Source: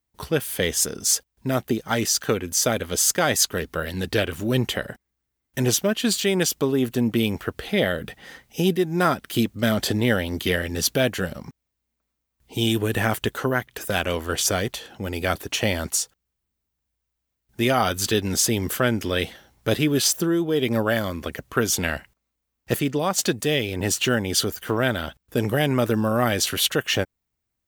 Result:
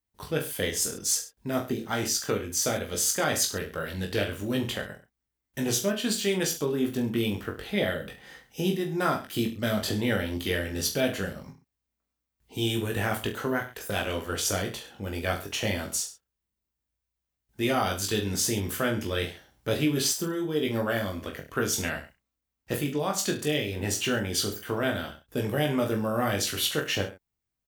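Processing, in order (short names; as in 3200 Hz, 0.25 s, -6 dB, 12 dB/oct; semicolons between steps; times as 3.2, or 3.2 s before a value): reverse bouncing-ball echo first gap 20 ms, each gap 1.15×, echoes 5; gain -7.5 dB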